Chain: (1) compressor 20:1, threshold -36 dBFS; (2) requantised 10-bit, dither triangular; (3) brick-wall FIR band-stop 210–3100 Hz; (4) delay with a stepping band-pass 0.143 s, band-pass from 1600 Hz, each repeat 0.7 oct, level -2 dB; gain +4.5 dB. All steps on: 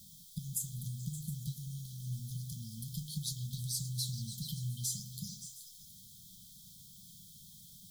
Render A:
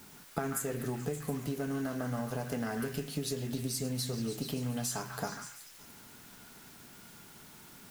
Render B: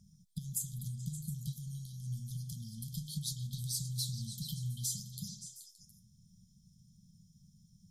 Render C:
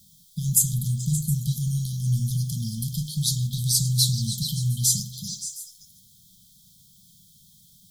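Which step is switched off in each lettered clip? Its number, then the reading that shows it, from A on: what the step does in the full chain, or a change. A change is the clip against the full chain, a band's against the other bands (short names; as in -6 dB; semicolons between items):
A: 3, 250 Hz band +11.0 dB; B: 2, distortion -18 dB; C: 1, mean gain reduction 14.0 dB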